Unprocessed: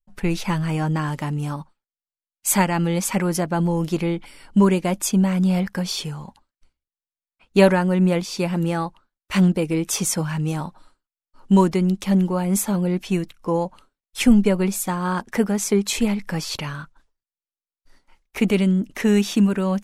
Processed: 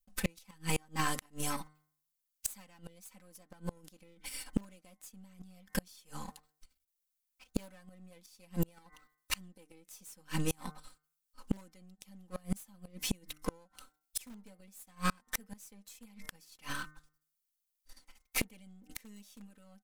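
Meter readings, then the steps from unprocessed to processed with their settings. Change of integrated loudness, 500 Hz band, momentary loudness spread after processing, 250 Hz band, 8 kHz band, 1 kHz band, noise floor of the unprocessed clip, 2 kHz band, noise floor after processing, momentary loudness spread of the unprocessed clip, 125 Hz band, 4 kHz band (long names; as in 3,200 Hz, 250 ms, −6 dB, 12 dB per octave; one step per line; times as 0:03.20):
−18.5 dB, −24.5 dB, 20 LU, −23.5 dB, −15.0 dB, −17.0 dB, below −85 dBFS, −13.5 dB, −85 dBFS, 11 LU, −21.5 dB, −13.5 dB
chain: gain on one half-wave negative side −12 dB
first-order pre-emphasis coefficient 0.8
comb filter 3.9 ms, depth 85%
dynamic equaliser 160 Hz, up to +4 dB, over −47 dBFS, Q 1
in parallel at −6 dB: wrap-around overflow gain 18 dB
on the sum: hum removal 152.2 Hz, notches 14
gate with flip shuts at −21 dBFS, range −33 dB
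level +4.5 dB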